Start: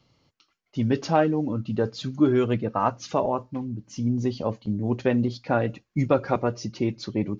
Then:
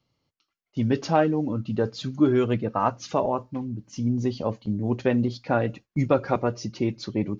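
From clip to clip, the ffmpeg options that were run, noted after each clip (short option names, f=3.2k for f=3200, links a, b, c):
-af "agate=range=-10dB:threshold=-45dB:ratio=16:detection=peak"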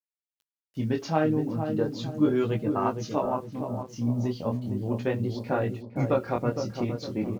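-filter_complex "[0:a]flanger=delay=18.5:depth=7.2:speed=0.38,acrusher=bits=9:mix=0:aa=0.000001,asplit=2[a][b];[b]adelay=461,lowpass=f=810:p=1,volume=-5.5dB,asplit=2[c][d];[d]adelay=461,lowpass=f=810:p=1,volume=0.47,asplit=2[e][f];[f]adelay=461,lowpass=f=810:p=1,volume=0.47,asplit=2[g][h];[h]adelay=461,lowpass=f=810:p=1,volume=0.47,asplit=2[i][j];[j]adelay=461,lowpass=f=810:p=1,volume=0.47,asplit=2[k][l];[l]adelay=461,lowpass=f=810:p=1,volume=0.47[m];[c][e][g][i][k][m]amix=inputs=6:normalize=0[n];[a][n]amix=inputs=2:normalize=0,volume=-1dB"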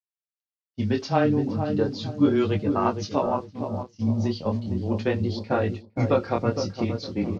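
-af "afreqshift=-14,agate=range=-33dB:threshold=-30dB:ratio=3:detection=peak,lowpass=f=4.9k:t=q:w=2.1,volume=3dB"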